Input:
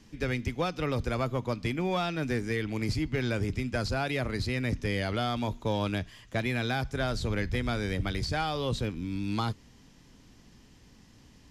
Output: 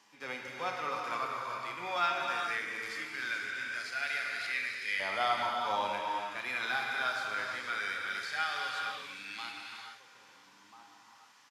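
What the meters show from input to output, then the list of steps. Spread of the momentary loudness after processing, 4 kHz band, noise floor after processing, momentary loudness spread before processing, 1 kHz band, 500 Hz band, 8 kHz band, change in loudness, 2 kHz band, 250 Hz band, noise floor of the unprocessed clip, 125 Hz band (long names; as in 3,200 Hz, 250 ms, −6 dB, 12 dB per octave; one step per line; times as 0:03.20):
10 LU, −1.5 dB, −60 dBFS, 3 LU, +2.0 dB, −9.5 dB, −3.0 dB, −3.0 dB, +3.0 dB, −20.5 dB, −57 dBFS, −28.5 dB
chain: low-shelf EQ 240 Hz +11.5 dB
slap from a distant wall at 230 metres, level −20 dB
auto-filter high-pass saw up 0.2 Hz 910–2,000 Hz
on a send: feedback echo with a high-pass in the loop 499 ms, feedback 62%, level −22 dB
on the sum: harmonic and percussive parts rebalanced percussive −13 dB
reverb whose tail is shaped and stops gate 500 ms flat, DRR −0.5 dB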